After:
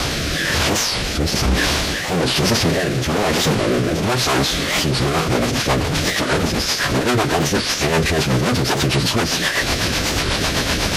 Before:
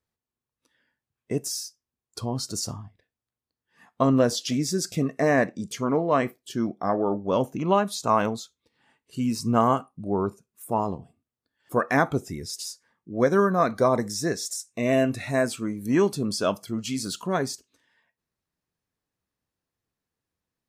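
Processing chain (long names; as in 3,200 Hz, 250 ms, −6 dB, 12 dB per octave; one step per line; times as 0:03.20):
linear delta modulator 32 kbit/s, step −28.5 dBFS
high-pass filter 44 Hz 24 dB per octave
mains-hum notches 50/100/150/200/250/300/350 Hz
in parallel at −0.5 dB: downward compressor 5 to 1, threshold −30 dBFS, peak gain reduction 13.5 dB
on the sum: phase-vocoder stretch with locked phases 0.53×
fuzz pedal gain 39 dB, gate −43 dBFS
phase-vocoder pitch shift with formants kept −8.5 semitones
rotating-speaker cabinet horn 1.1 Hz, later 8 Hz, at 0:04.42
wow of a warped record 45 rpm, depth 250 cents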